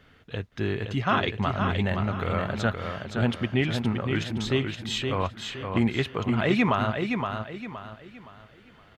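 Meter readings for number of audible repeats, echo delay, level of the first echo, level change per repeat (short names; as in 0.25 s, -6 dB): 4, 0.518 s, -5.5 dB, -9.5 dB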